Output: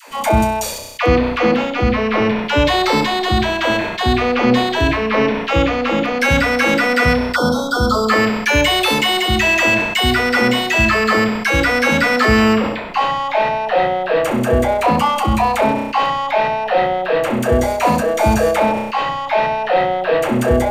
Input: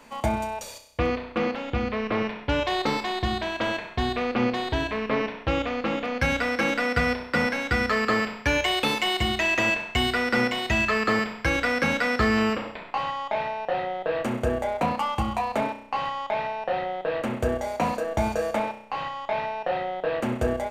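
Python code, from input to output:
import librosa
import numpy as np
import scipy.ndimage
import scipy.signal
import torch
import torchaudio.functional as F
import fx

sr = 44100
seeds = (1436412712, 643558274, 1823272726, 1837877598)

p1 = fx.brickwall_bandstop(x, sr, low_hz=1500.0, high_hz=3100.0, at=(7.34, 8.08), fade=0.02)
p2 = fx.high_shelf(p1, sr, hz=10000.0, db=7.5)
p3 = fx.rider(p2, sr, range_db=10, speed_s=2.0)
p4 = p2 + (p3 * 10.0 ** (-1.5 / 20.0))
p5 = fx.dispersion(p4, sr, late='lows', ms=95.0, hz=520.0)
p6 = fx.sustainer(p5, sr, db_per_s=50.0)
y = p6 * 10.0 ** (4.5 / 20.0)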